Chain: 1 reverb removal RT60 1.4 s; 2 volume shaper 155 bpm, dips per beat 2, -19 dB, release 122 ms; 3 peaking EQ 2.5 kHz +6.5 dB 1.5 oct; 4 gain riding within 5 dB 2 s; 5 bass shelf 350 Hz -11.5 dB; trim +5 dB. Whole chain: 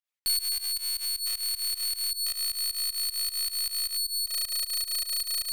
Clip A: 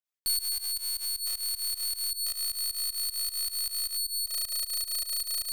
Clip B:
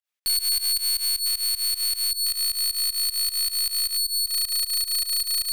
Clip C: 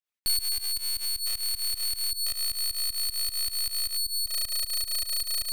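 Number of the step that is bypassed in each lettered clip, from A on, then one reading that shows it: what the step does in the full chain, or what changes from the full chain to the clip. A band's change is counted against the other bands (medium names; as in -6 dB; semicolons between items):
3, 2 kHz band -3.5 dB; 1, crest factor change -3.0 dB; 5, crest factor change -2.0 dB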